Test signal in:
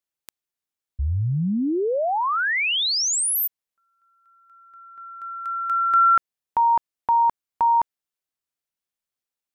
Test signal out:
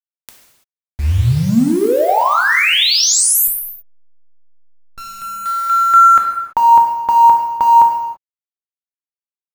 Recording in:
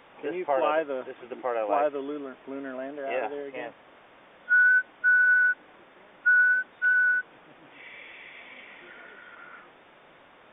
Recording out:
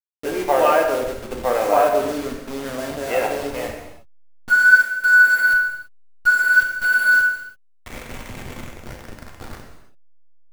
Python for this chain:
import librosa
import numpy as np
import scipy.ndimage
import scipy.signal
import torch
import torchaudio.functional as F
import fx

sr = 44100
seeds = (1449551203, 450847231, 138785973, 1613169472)

y = fx.delta_hold(x, sr, step_db=-35.0)
y = fx.rev_gated(y, sr, seeds[0], gate_ms=360, shape='falling', drr_db=1.0)
y = y * librosa.db_to_amplitude(7.0)